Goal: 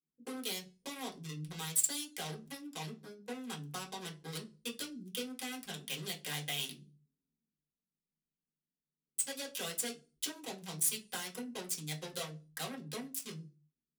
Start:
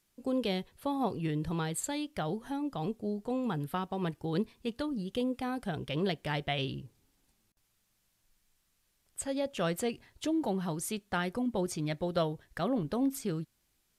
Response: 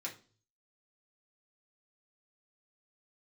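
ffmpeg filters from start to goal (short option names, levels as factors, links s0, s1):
-filter_complex "[0:a]adynamicequalizer=threshold=0.00141:dfrequency=4300:dqfactor=3.2:tfrequency=4300:tqfactor=3.2:attack=5:release=100:ratio=0.375:range=2.5:mode=boostabove:tftype=bell,acompressor=threshold=0.0224:ratio=6,acrossover=split=340[s0][s1];[s1]acrusher=bits=5:mix=0:aa=0.5[s2];[s0][s2]amix=inputs=2:normalize=0,crystalizer=i=5:c=0[s3];[1:a]atrim=start_sample=2205,asetrate=61740,aresample=44100[s4];[s3][s4]afir=irnorm=-1:irlink=0,volume=0.708"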